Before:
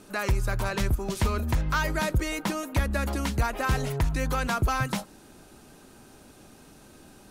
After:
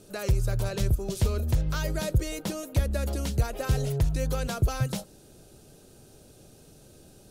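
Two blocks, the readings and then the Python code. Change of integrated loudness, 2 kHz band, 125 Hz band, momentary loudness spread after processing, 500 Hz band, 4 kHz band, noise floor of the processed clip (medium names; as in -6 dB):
-1.0 dB, -9.0 dB, +2.0 dB, 3 LU, -0.5 dB, -2.5 dB, -54 dBFS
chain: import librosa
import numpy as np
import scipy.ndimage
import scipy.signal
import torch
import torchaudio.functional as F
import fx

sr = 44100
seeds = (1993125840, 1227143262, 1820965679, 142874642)

y = fx.graphic_eq(x, sr, hz=(125, 250, 500, 1000, 2000), db=(5, -7, 5, -11, -8))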